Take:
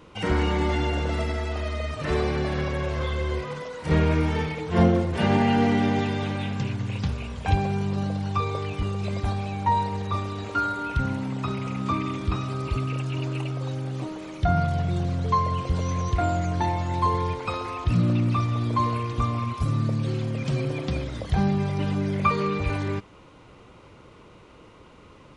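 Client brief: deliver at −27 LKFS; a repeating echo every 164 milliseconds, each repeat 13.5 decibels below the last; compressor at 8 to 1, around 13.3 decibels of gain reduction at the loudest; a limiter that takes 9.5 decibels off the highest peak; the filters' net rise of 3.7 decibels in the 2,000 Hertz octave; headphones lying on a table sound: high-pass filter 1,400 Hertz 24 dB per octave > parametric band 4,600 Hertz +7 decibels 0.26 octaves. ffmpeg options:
ffmpeg -i in.wav -af "equalizer=frequency=2000:width_type=o:gain=5.5,acompressor=threshold=-28dB:ratio=8,alimiter=level_in=3.5dB:limit=-24dB:level=0:latency=1,volume=-3.5dB,highpass=frequency=1400:width=0.5412,highpass=frequency=1400:width=1.3066,equalizer=frequency=4600:width_type=o:width=0.26:gain=7,aecho=1:1:164|328:0.211|0.0444,volume=16dB" out.wav

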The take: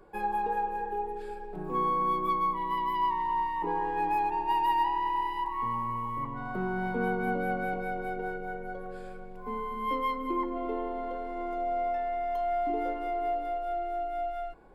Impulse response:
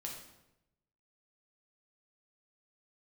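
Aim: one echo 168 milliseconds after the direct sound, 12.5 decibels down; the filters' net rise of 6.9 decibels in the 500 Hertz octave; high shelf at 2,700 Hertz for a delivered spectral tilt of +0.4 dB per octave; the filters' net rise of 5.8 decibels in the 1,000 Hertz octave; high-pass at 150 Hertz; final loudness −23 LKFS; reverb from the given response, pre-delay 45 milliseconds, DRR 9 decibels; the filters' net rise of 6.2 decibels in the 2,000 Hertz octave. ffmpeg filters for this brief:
-filter_complex "[0:a]highpass=150,equalizer=frequency=500:width_type=o:gain=8.5,equalizer=frequency=1000:width_type=o:gain=3,equalizer=frequency=2000:width_type=o:gain=8,highshelf=frequency=2700:gain=-3.5,aecho=1:1:168:0.237,asplit=2[link_01][link_02];[1:a]atrim=start_sample=2205,adelay=45[link_03];[link_02][link_03]afir=irnorm=-1:irlink=0,volume=-7dB[link_04];[link_01][link_04]amix=inputs=2:normalize=0,volume=1.5dB"

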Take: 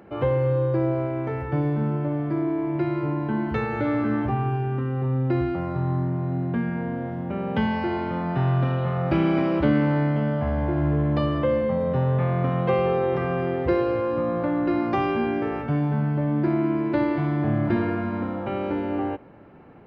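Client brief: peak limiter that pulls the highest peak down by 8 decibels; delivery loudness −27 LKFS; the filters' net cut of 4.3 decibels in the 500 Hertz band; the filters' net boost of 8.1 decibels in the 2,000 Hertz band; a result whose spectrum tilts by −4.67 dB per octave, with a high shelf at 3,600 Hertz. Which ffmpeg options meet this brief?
ffmpeg -i in.wav -af "equalizer=frequency=500:width_type=o:gain=-6,equalizer=frequency=2000:width_type=o:gain=9,highshelf=frequency=3600:gain=6,volume=-1dB,alimiter=limit=-17.5dB:level=0:latency=1" out.wav

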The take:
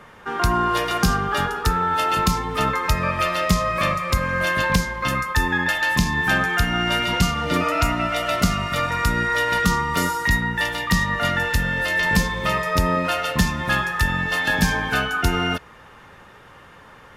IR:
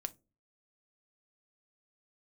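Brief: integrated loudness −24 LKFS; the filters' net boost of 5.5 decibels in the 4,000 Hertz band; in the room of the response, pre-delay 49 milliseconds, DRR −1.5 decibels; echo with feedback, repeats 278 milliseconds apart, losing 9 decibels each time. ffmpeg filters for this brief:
-filter_complex "[0:a]equalizer=frequency=4000:width_type=o:gain=7.5,aecho=1:1:278|556|834|1112:0.355|0.124|0.0435|0.0152,asplit=2[link_01][link_02];[1:a]atrim=start_sample=2205,adelay=49[link_03];[link_02][link_03]afir=irnorm=-1:irlink=0,volume=3dB[link_04];[link_01][link_04]amix=inputs=2:normalize=0,volume=-9dB"

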